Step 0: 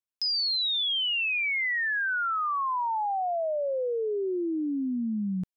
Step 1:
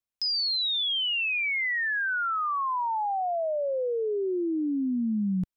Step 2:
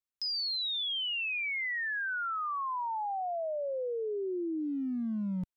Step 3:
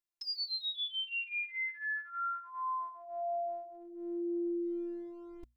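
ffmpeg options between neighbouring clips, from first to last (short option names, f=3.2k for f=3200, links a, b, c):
-af "lowshelf=f=130:g=9"
-af "asoftclip=type=hard:threshold=-24.5dB,volume=-6dB"
-af "afftfilt=real='hypot(re,im)*cos(PI*b)':imag='0':win_size=512:overlap=0.75,bandreject=f=60:t=h:w=6,bandreject=f=120:t=h:w=6,bandreject=f=180:t=h:w=6,bandreject=f=240:t=h:w=6"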